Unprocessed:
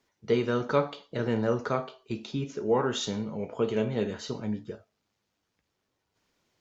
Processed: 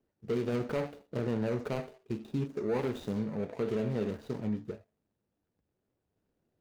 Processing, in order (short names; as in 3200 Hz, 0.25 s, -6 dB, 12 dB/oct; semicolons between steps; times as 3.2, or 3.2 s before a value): median filter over 41 samples; limiter -24 dBFS, peak gain reduction 8 dB